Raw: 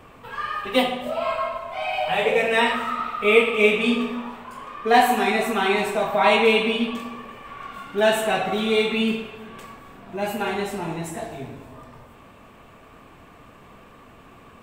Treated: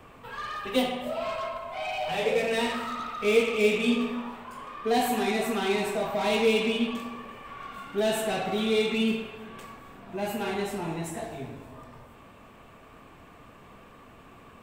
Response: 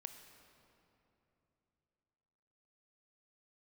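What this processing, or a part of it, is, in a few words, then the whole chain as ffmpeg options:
one-band saturation: -filter_complex "[0:a]acrossover=split=570|3300[a][b][c];[b]asoftclip=type=tanh:threshold=-29.5dB[d];[a][d][c]amix=inputs=3:normalize=0,volume=-3dB"

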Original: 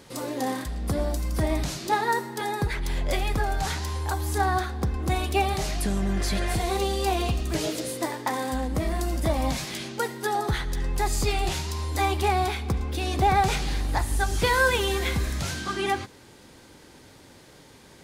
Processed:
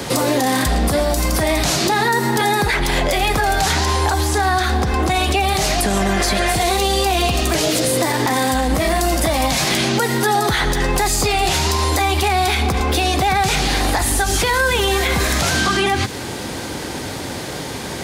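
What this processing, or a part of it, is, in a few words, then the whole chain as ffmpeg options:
mastering chain: -filter_complex "[0:a]highpass=51,equalizer=f=720:t=o:w=0.27:g=4,acrossover=split=220|440|1600[a][b][c][d];[a]acompressor=threshold=-40dB:ratio=4[e];[b]acompressor=threshold=-45dB:ratio=4[f];[c]acompressor=threshold=-37dB:ratio=4[g];[d]acompressor=threshold=-36dB:ratio=4[h];[e][f][g][h]amix=inputs=4:normalize=0,acompressor=threshold=-35dB:ratio=2.5,asoftclip=type=tanh:threshold=-24dB,alimiter=level_in=31.5dB:limit=-1dB:release=50:level=0:latency=1,asettb=1/sr,asplit=3[i][j][k];[i]atrim=end=3.734[l];[j]atrim=start=3.73:end=5.39,asetpts=PTS-STARTPTS,afade=t=in:d=0.004:c=qsin,afade=t=out:st=1.656:d=0.004:c=qsin,acrossover=split=8900[m][n];[n]acompressor=threshold=-29dB:ratio=4:attack=1:release=60[o];[m][o]amix=inputs=2:normalize=0[p];[k]atrim=start=5.386[q];[l][p]acrossfade=d=0.004:c1=hsin:c2=qsin[r];[r][q]acrossfade=d=0.004:c1=qsin:c2=hsin,volume=-8dB"

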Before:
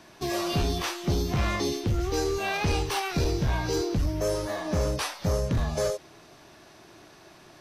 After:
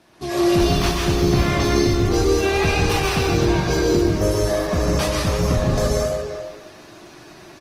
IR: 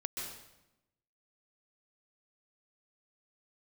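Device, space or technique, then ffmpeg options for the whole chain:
speakerphone in a meeting room: -filter_complex "[0:a]asettb=1/sr,asplit=3[a][b][c];[a]atrim=end=2.834[d];[b]atrim=start=2.83:end=4.08,asetpts=PTS-STARTPTS,afade=t=in:d=0.004:c=qsin,afade=t=out:st=1.246:d=0.004:c=qsin,highpass=65[e];[c]atrim=start=4.076[f];[d][e]acrossfade=d=0.004:c1=hsin:c2=qsin[g];[g][f]acrossfade=d=0.004:c1=qsin:c2=hsin[h];[1:a]atrim=start_sample=2205[i];[h][i]afir=irnorm=-1:irlink=0,asplit=2[j][k];[k]adelay=340,highpass=300,lowpass=3.4k,asoftclip=type=hard:threshold=-22.5dB,volume=-8dB[l];[j][l]amix=inputs=2:normalize=0,dynaudnorm=f=160:g=3:m=7dB" -ar 48000 -c:a libopus -b:a 20k

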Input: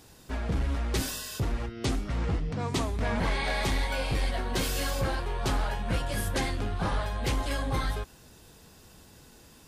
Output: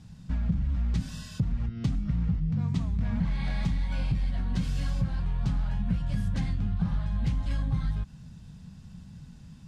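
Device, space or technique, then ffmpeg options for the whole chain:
jukebox: -af "lowpass=6.8k,lowshelf=f=260:t=q:w=3:g=13.5,acompressor=threshold=-19dB:ratio=4,volume=-6dB"

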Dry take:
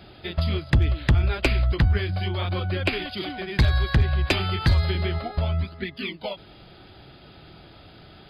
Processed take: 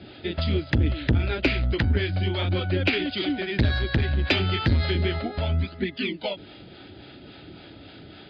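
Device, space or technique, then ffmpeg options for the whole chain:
guitar amplifier with harmonic tremolo: -filter_complex "[0:a]acrossover=split=520[a][b];[a]aeval=exprs='val(0)*(1-0.5/2+0.5/2*cos(2*PI*3.6*n/s))':c=same[c];[b]aeval=exprs='val(0)*(1-0.5/2-0.5/2*cos(2*PI*3.6*n/s))':c=same[d];[c][d]amix=inputs=2:normalize=0,asoftclip=type=tanh:threshold=-18.5dB,highpass=81,equalizer=f=150:t=q:w=4:g=-5,equalizer=f=280:t=q:w=4:g=7,equalizer=f=730:t=q:w=4:g=-4,equalizer=f=1.1k:t=q:w=4:g=-10,lowpass=f=4.5k:w=0.5412,lowpass=f=4.5k:w=1.3066,volume=6dB"

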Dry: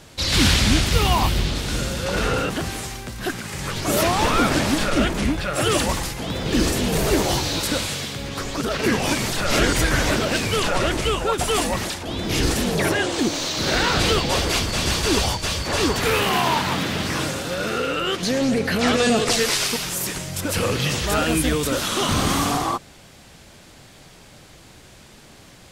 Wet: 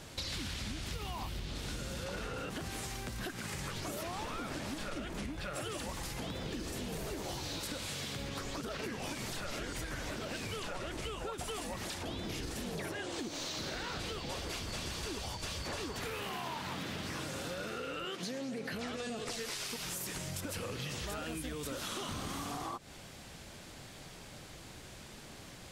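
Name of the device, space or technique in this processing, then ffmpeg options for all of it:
serial compression, peaks first: -filter_complex "[0:a]acompressor=threshold=-28dB:ratio=6,acompressor=threshold=-34dB:ratio=3,asettb=1/sr,asplit=3[a][b][c];[a]atrim=end=18.054[d];[b]atrim=start=18.05:end=18.73,asetpts=PTS-STARTPTS,afade=t=in:d=0.004:c=qsin,afade=t=out:st=0.676:d=0.004:c=qsin,highpass=f=130:w=0.5412,highpass=f=130:w=1.3066[e];[c]atrim=start=18.726[f];[d][e]acrossfade=d=0.004:c1=hsin:c2=qsin[g];[g][f]acrossfade=d=0.004:c1=qsin:c2=hsin,volume=-4dB"

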